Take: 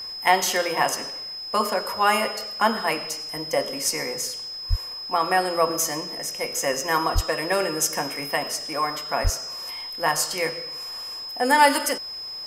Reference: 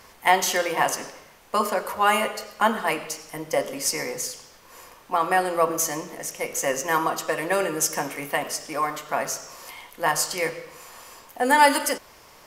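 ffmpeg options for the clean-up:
-filter_complex "[0:a]bandreject=f=5100:w=30,asplit=3[s0][s1][s2];[s0]afade=t=out:st=4.69:d=0.02[s3];[s1]highpass=f=140:w=0.5412,highpass=f=140:w=1.3066,afade=t=in:st=4.69:d=0.02,afade=t=out:st=4.81:d=0.02[s4];[s2]afade=t=in:st=4.81:d=0.02[s5];[s3][s4][s5]amix=inputs=3:normalize=0,asplit=3[s6][s7][s8];[s6]afade=t=out:st=7.14:d=0.02[s9];[s7]highpass=f=140:w=0.5412,highpass=f=140:w=1.3066,afade=t=in:st=7.14:d=0.02,afade=t=out:st=7.26:d=0.02[s10];[s8]afade=t=in:st=7.26:d=0.02[s11];[s9][s10][s11]amix=inputs=3:normalize=0,asplit=3[s12][s13][s14];[s12]afade=t=out:st=9.23:d=0.02[s15];[s13]highpass=f=140:w=0.5412,highpass=f=140:w=1.3066,afade=t=in:st=9.23:d=0.02,afade=t=out:st=9.35:d=0.02[s16];[s14]afade=t=in:st=9.35:d=0.02[s17];[s15][s16][s17]amix=inputs=3:normalize=0"

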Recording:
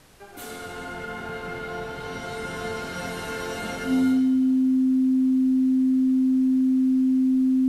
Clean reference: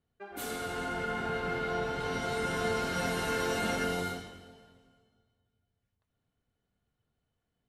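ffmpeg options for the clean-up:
-af "bandreject=f=260:w=30,agate=range=0.0891:threshold=0.0398,asetnsamples=n=441:p=0,asendcmd='5.09 volume volume 4.5dB',volume=1"

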